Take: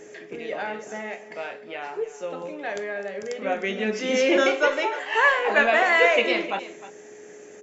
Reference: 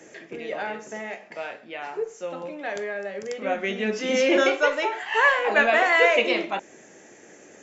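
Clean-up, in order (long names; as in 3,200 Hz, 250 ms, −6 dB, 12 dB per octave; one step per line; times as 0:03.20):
notch filter 420 Hz, Q 30
echo removal 307 ms −15.5 dB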